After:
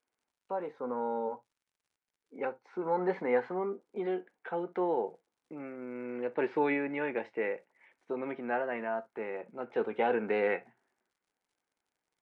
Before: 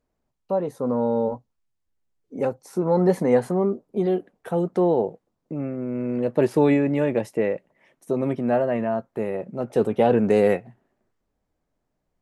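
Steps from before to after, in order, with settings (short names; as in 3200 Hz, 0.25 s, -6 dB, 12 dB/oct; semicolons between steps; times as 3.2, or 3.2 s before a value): speaker cabinet 360–3500 Hz, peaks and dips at 610 Hz -7 dB, 870 Hz +5 dB, 1500 Hz +8 dB, 2200 Hz +8 dB; on a send at -16 dB: reverb, pre-delay 4 ms; on the sum: crackle 79/s -56 dBFS; gain -7.5 dB; MP3 64 kbps 24000 Hz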